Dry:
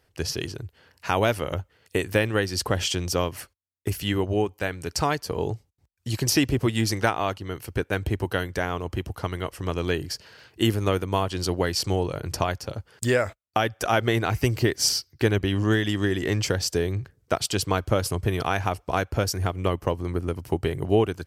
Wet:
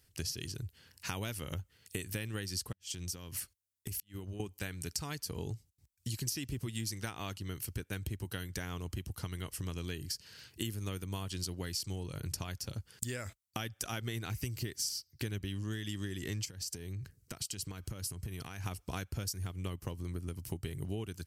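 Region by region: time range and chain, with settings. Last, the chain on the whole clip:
2.72–4.40 s: compression 16:1, threshold -32 dBFS + inverted gate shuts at -24 dBFS, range -37 dB
16.45–18.66 s: band-stop 3.5 kHz + compression 10:1, threshold -32 dBFS
whole clip: FFT filter 190 Hz 0 dB, 640 Hz -13 dB, 8.7 kHz +8 dB; compression 5:1, threshold -34 dBFS; trim -2 dB

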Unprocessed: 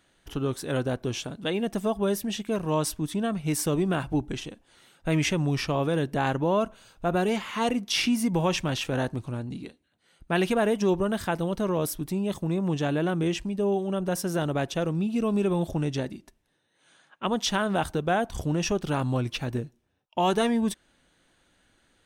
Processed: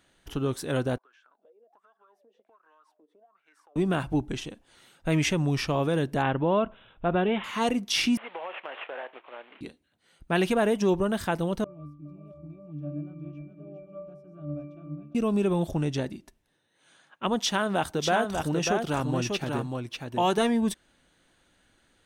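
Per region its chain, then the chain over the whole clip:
0.98–3.76 s: high-pass 280 Hz 24 dB/octave + wah-wah 1.3 Hz 470–1600 Hz, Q 15 + compression 8:1, threshold -57 dBFS
6.22–7.44 s: brick-wall FIR low-pass 4.2 kHz + careless resampling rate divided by 6×, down none, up filtered
8.17–9.61 s: CVSD coder 16 kbps + high-pass 520 Hz 24 dB/octave + compression, threshold -32 dBFS
11.64–15.15 s: pitch-class resonator D, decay 0.5 s + multi-tap echo 409/415/546/736 ms -9/-17.5/-18/-15 dB
17.39–20.38 s: high-pass 160 Hz 6 dB/octave + delay 593 ms -4.5 dB
whole clip: none

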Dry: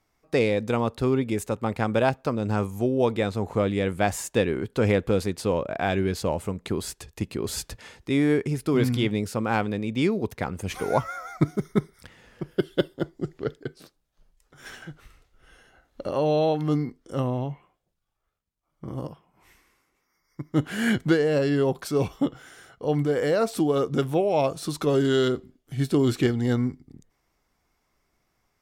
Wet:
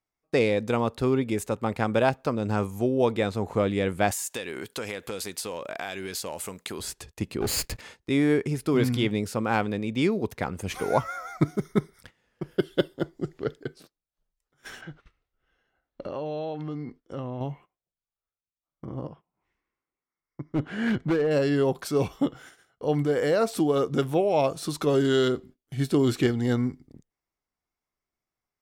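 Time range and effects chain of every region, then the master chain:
4.11–6.80 s: tilt EQ +3.5 dB/octave + compression 5:1, threshold -29 dBFS
7.41–7.81 s: comb filter that takes the minimum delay 0.44 ms + waveshaping leveller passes 2
14.81–17.41 s: low-pass 4.2 kHz + compression 4:1, threshold -30 dBFS
18.85–21.31 s: tape spacing loss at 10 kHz 22 dB + overload inside the chain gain 19 dB
whole clip: gate -46 dBFS, range -17 dB; bass shelf 160 Hz -3 dB

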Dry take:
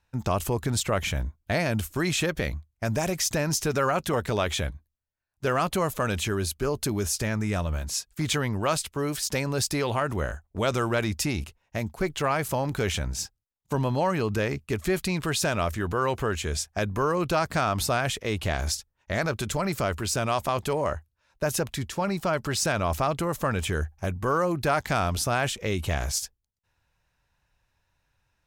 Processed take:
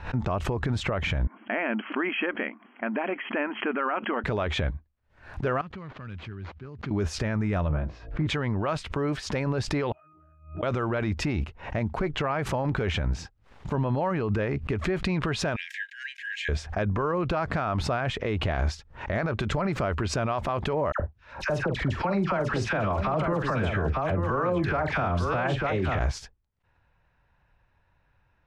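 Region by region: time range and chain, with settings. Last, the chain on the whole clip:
1.27–4.24 s: brick-wall FIR band-pass 210–3300 Hz + peaking EQ 500 Hz -8.5 dB 1.2 oct
5.61–6.91 s: high-pass 76 Hz 24 dB/octave + amplifier tone stack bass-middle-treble 6-0-2 + decimation joined by straight lines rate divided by 4×
7.68–8.27 s: tape spacing loss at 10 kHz 39 dB + doubling 20 ms -6 dB + de-hum 57.16 Hz, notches 12
9.92–10.63 s: pre-emphasis filter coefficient 0.97 + pitch-class resonator D#, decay 0.67 s + level flattener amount 100%
15.56–16.49 s: Chebyshev high-pass 1.6 kHz, order 10 + comb 4.2 ms, depth 35%
20.92–25.99 s: phase dispersion lows, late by 75 ms, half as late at 1.3 kHz + multi-tap echo 45/899 ms -12/-8 dB
whole clip: low-pass 2.1 kHz 12 dB/octave; peak limiter -25 dBFS; swell ahead of each attack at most 120 dB/s; trim +6.5 dB

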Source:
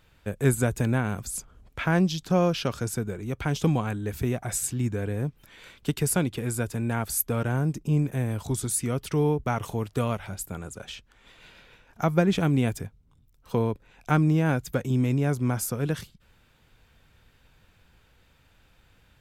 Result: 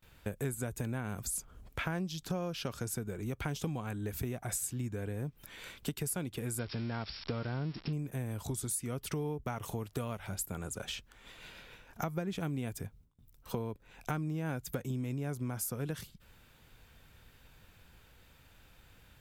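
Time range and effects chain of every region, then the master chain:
6.59–7.93 s: zero-crossing glitches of -19 dBFS + brick-wall FIR low-pass 5.6 kHz + treble shelf 4.4 kHz -7.5 dB
whole clip: gate with hold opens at -52 dBFS; treble shelf 11 kHz +10.5 dB; compression 6:1, threshold -34 dBFS

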